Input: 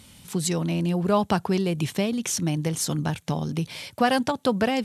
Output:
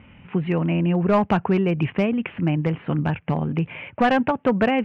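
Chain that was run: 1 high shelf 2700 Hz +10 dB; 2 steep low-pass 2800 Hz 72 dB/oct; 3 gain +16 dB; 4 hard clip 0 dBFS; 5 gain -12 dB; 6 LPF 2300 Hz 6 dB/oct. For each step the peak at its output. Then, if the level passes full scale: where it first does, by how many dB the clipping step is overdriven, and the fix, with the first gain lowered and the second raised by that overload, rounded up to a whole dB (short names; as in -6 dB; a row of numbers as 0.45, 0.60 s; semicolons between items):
-4.5, -7.0, +9.0, 0.0, -12.0, -12.0 dBFS; step 3, 9.0 dB; step 3 +7 dB, step 5 -3 dB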